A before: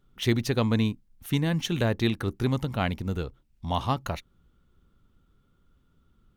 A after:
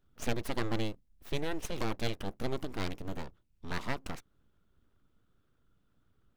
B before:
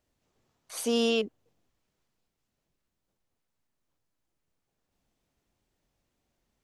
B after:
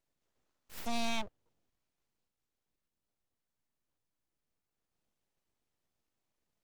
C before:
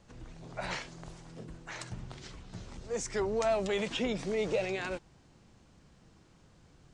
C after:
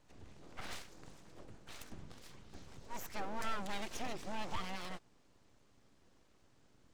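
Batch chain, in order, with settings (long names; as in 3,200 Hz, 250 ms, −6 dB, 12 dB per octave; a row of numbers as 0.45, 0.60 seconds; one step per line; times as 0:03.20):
full-wave rectification
level −6 dB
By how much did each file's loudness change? −10.0, −9.0, −10.5 LU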